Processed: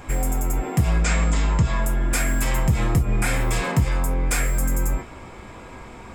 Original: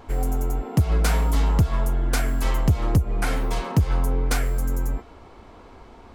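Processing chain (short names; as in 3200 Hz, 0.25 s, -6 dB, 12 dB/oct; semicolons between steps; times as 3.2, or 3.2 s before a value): 1.02–1.82 Chebyshev low-pass 7300 Hz, order 4; limiter -19 dBFS, peak gain reduction 9.5 dB; reverb, pre-delay 3 ms, DRR 3.5 dB; gain +8.5 dB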